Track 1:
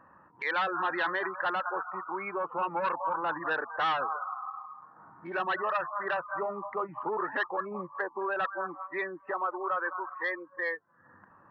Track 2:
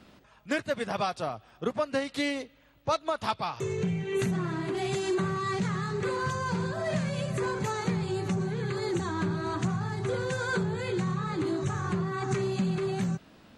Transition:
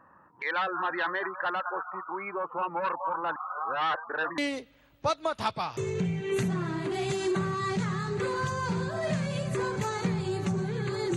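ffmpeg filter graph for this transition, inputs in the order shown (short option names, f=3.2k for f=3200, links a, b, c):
-filter_complex "[0:a]apad=whole_dur=11.16,atrim=end=11.16,asplit=2[a][b];[a]atrim=end=3.362[c];[b]atrim=start=3.358:end=4.382,asetpts=PTS-STARTPTS,areverse[d];[1:a]atrim=start=2.208:end=8.99[e];[c][d]acrossfade=d=0.004:c1=hsin:c2=hsin[f];[f][e]acrossfade=d=0.004:c1=hsin:c2=hsin"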